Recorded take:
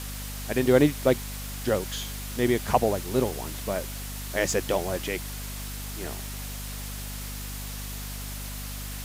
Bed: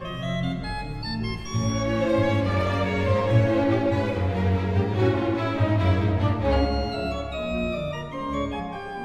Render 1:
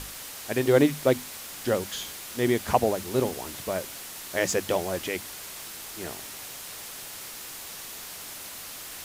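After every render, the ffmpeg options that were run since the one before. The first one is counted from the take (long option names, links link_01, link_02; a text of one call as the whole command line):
ffmpeg -i in.wav -af "bandreject=frequency=50:width_type=h:width=6,bandreject=frequency=100:width_type=h:width=6,bandreject=frequency=150:width_type=h:width=6,bandreject=frequency=200:width_type=h:width=6,bandreject=frequency=250:width_type=h:width=6" out.wav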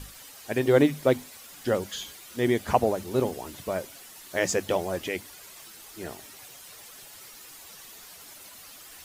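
ffmpeg -i in.wav -af "afftdn=noise_reduction=10:noise_floor=-41" out.wav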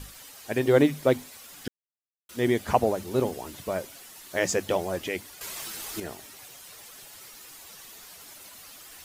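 ffmpeg -i in.wav -filter_complex "[0:a]asplit=5[link_01][link_02][link_03][link_04][link_05];[link_01]atrim=end=1.68,asetpts=PTS-STARTPTS,afade=type=out:start_time=1.676:duration=0.004:curve=hsin[link_06];[link_02]atrim=start=1.68:end=2.29,asetpts=PTS-STARTPTS,volume=0[link_07];[link_03]atrim=start=2.29:end=5.412,asetpts=PTS-STARTPTS,afade=type=in:duration=0.004:curve=hsin[link_08];[link_04]atrim=start=5.408:end=6.002,asetpts=PTS-STARTPTS,volume=9.5dB[link_09];[link_05]atrim=start=5.998[link_10];[link_06][link_07][link_08]concat=n=3:v=0:a=1[link_11];[link_11][link_09]acrossfade=duration=0.004:curve1=hsin:curve2=hsin[link_12];[link_12][link_10]acrossfade=duration=0.004:curve1=hsin:curve2=hsin" out.wav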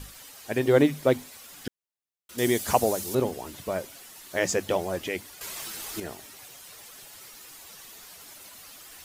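ffmpeg -i in.wav -filter_complex "[0:a]asettb=1/sr,asplit=3[link_01][link_02][link_03];[link_01]atrim=end=2.384[link_04];[link_02]atrim=start=2.38:end=3.15,asetpts=PTS-STARTPTS,afade=type=in:duration=0.004:curve=qsin,afade=type=out:start_time=0.766:duration=0.004:curve=qsin,bass=frequency=250:gain=-2,treble=frequency=4000:gain=13[link_05];[link_03]atrim=start=3.146[link_06];[link_04][link_05]acrossfade=duration=0.004:curve1=hsin:curve2=qsin[link_07];[link_07][link_06]acrossfade=duration=0.004:curve1=qsin:curve2=hsin" out.wav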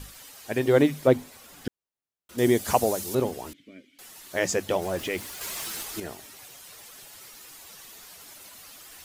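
ffmpeg -i in.wav -filter_complex "[0:a]asettb=1/sr,asplit=3[link_01][link_02][link_03];[link_01]atrim=end=1.074[link_04];[link_02]atrim=start=1.07:end=2.65,asetpts=PTS-STARTPTS,afade=type=in:duration=0.004:curve=qsin,afade=type=out:start_time=1.576:duration=0.004:curve=qsin,tiltshelf=frequency=1400:gain=4[link_05];[link_03]atrim=start=2.646[link_06];[link_04][link_05]acrossfade=duration=0.004:curve1=hsin:curve2=qsin[link_07];[link_07][link_06]acrossfade=duration=0.004:curve1=qsin:curve2=hsin,asettb=1/sr,asplit=3[link_08][link_09][link_10];[link_08]atrim=end=3.534[link_11];[link_09]atrim=start=3.53:end=3.99,asetpts=PTS-STARTPTS,afade=type=in:duration=0.004:curve=qsin,afade=type=out:start_time=0.456:duration=0.004:curve=qsin,asplit=3[link_12][link_13][link_14];[link_12]bandpass=frequency=270:width_type=q:width=8,volume=0dB[link_15];[link_13]bandpass=frequency=2290:width_type=q:width=8,volume=-6dB[link_16];[link_14]bandpass=frequency=3010:width_type=q:width=8,volume=-9dB[link_17];[link_15][link_16][link_17]amix=inputs=3:normalize=0[link_18];[link_10]atrim=start=3.986[link_19];[link_11][link_18]acrossfade=duration=0.004:curve1=hsin:curve2=qsin[link_20];[link_20][link_19]acrossfade=duration=0.004:curve1=qsin:curve2=hsin,asettb=1/sr,asplit=3[link_21][link_22][link_23];[link_21]atrim=end=4.824[link_24];[link_22]atrim=start=4.82:end=5.83,asetpts=PTS-STARTPTS,afade=type=in:duration=0.004:curve=qsin,afade=type=out:start_time=1.006:duration=0.004:curve=qsin,aeval=exprs='val(0)+0.5*0.0126*sgn(val(0))':channel_layout=same[link_25];[link_23]atrim=start=5.826[link_26];[link_24][link_25]acrossfade=duration=0.004:curve1=hsin:curve2=qsin[link_27];[link_27][link_26]acrossfade=duration=0.004:curve1=qsin:curve2=hsin" out.wav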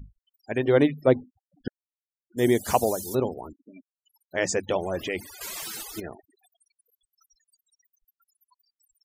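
ffmpeg -i in.wav -af "afftfilt=real='re*gte(hypot(re,im),0.0141)':imag='im*gte(hypot(re,im),0.0141)':win_size=1024:overlap=0.75" out.wav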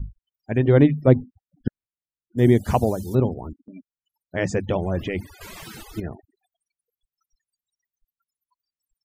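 ffmpeg -i in.wav -af "agate=range=-7dB:threshold=-52dB:ratio=16:detection=peak,bass=frequency=250:gain=14,treble=frequency=4000:gain=-10" out.wav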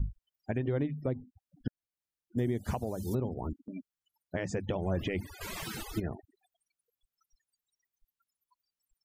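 ffmpeg -i in.wav -af "acompressor=threshold=-24dB:ratio=6,alimiter=limit=-22dB:level=0:latency=1:release=433" out.wav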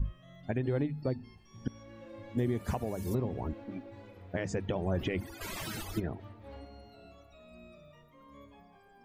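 ffmpeg -i in.wav -i bed.wav -filter_complex "[1:a]volume=-26.5dB[link_01];[0:a][link_01]amix=inputs=2:normalize=0" out.wav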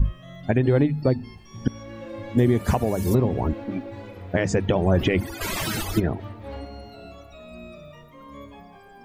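ffmpeg -i in.wav -af "volume=12dB" out.wav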